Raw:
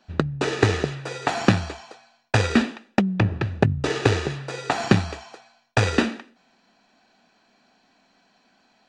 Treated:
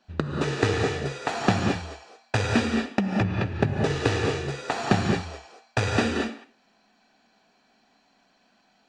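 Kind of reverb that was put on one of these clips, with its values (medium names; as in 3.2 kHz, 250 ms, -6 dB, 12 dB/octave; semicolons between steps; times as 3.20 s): gated-style reverb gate 250 ms rising, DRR 0 dB; trim -5 dB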